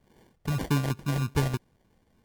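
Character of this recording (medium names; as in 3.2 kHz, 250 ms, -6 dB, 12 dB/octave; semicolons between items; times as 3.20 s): phasing stages 2, 3.2 Hz, lowest notch 360–3000 Hz; aliases and images of a low sample rate 1.3 kHz, jitter 0%; MP3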